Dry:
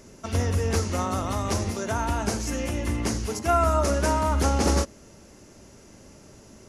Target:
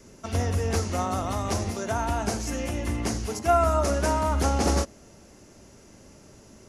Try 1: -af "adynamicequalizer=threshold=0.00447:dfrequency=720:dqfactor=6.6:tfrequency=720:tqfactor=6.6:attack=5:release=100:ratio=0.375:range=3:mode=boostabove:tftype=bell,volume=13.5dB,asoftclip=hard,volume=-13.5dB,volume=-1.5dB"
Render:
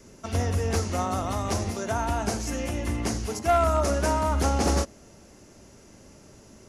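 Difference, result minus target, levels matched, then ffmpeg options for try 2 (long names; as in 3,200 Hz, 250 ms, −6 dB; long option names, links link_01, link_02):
gain into a clipping stage and back: distortion +37 dB
-af "adynamicequalizer=threshold=0.00447:dfrequency=720:dqfactor=6.6:tfrequency=720:tqfactor=6.6:attack=5:release=100:ratio=0.375:range=3:mode=boostabove:tftype=bell,volume=7.5dB,asoftclip=hard,volume=-7.5dB,volume=-1.5dB"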